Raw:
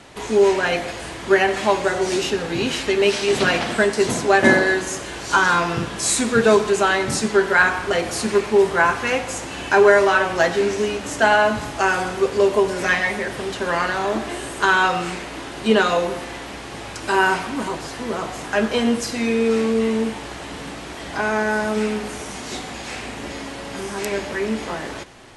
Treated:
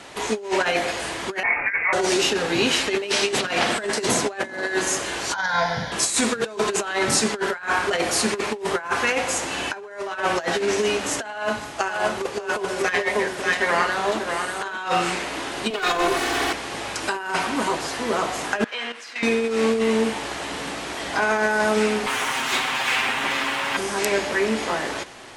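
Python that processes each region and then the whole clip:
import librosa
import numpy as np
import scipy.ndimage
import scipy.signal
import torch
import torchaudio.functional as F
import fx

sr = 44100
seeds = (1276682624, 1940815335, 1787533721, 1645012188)

y = fx.chain(x, sr, fx.freq_invert(carrier_hz=2600),
    fx.detune_double(cents=30), at=(1.43, 1.93))
y = fx.chain(y, sr, fx.lowpass(hz=8400.0, slope=12),
    fx.fixed_phaser(hz=1800.0, stages=8), at=(5.34, 5.92))
y = fx.chain(y, sr, fx.echo_multitap(ms=(53, 591), db=(-14.0, -4.0)),
    fx.upward_expand(threshold_db=-28.0, expansion=1.5), at=(11.3, 14.78))
y = fx.chain(y, sr, fx.lower_of_two(delay_ms=2.7),
    fx.band_squash(depth_pct=70), at=(15.7, 16.53))
y = fx.chain(y, sr, fx.bandpass_q(hz=2100.0, q=1.2),
    fx.level_steps(step_db=11), at=(18.64, 19.23))
y = fx.chain(y, sr, fx.lower_of_two(delay_ms=7.6),
    fx.band_shelf(hz=1700.0, db=9.0, octaves=2.3), at=(22.06, 23.77))
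y = fx.low_shelf(y, sr, hz=230.0, db=-11.0)
y = fx.over_compress(y, sr, threshold_db=-23.0, ratio=-0.5)
y = F.gain(torch.from_numpy(y), 1.5).numpy()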